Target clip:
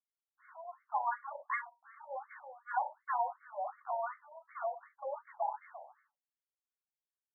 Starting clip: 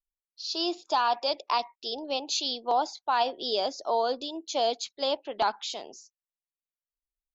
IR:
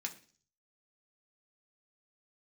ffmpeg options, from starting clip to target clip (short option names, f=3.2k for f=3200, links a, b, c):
-filter_complex "[0:a]aeval=exprs='if(lt(val(0),0),0.251*val(0),val(0))':c=same[a];[1:a]atrim=start_sample=2205,atrim=end_sample=4410[b];[a][b]afir=irnorm=-1:irlink=0,afftfilt=real='re*between(b*sr/1024,680*pow(1600/680,0.5+0.5*sin(2*PI*2.7*pts/sr))/1.41,680*pow(1600/680,0.5+0.5*sin(2*PI*2.7*pts/sr))*1.41)':imag='im*between(b*sr/1024,680*pow(1600/680,0.5+0.5*sin(2*PI*2.7*pts/sr))/1.41,680*pow(1600/680,0.5+0.5*sin(2*PI*2.7*pts/sr))*1.41)':win_size=1024:overlap=0.75"